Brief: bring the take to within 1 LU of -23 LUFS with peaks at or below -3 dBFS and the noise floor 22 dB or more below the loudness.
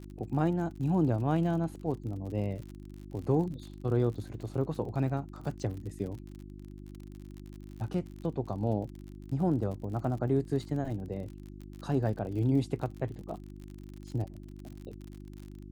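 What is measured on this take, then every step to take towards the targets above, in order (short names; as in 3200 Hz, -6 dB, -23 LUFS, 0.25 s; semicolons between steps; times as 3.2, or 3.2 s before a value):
ticks 50/s; hum 50 Hz; harmonics up to 350 Hz; hum level -44 dBFS; loudness -33.0 LUFS; peak -15.0 dBFS; loudness target -23.0 LUFS
-> de-click; de-hum 50 Hz, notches 7; gain +10 dB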